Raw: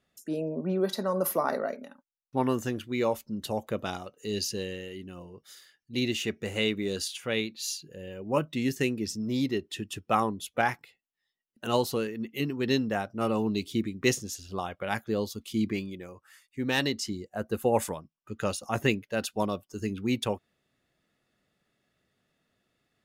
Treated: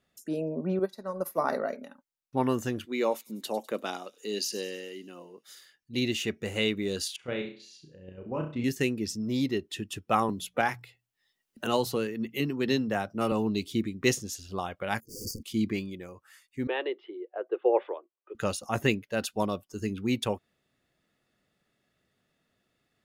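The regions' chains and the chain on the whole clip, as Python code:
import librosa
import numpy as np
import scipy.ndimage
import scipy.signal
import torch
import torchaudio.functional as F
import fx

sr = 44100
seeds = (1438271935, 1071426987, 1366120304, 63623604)

y = fx.chain(x, sr, fx.notch(hz=3100.0, q=5.9),
    fx.upward_expand(threshold_db=-35.0, expansion=2.5), at=(0.79, 1.38))
y = fx.chain(y, sr, fx.highpass(hz=230.0, slope=24),
    fx.echo_wet_highpass(ms=100, feedback_pct=53, hz=4900.0, wet_db=-12.0), at=(2.85, 5.46))
y = fx.chain(y, sr, fx.level_steps(step_db=10),
    fx.spacing_loss(db_at_10k=26),
    fx.room_flutter(wall_m=5.6, rt60_s=0.4), at=(7.16, 8.64))
y = fx.chain(y, sr, fx.hum_notches(base_hz=60, count=3),
    fx.band_squash(depth_pct=40), at=(10.29, 13.32))
y = fx.chain(y, sr, fx.overflow_wrap(gain_db=31.0),
    fx.transient(attack_db=-11, sustain_db=12),
    fx.brickwall_bandstop(low_hz=530.0, high_hz=4500.0), at=(15.0, 15.43))
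y = fx.chain(y, sr, fx.cheby1_bandpass(low_hz=350.0, high_hz=3400.0, order=5),
    fx.tilt_shelf(db=7.5, hz=680.0), at=(16.67, 18.35))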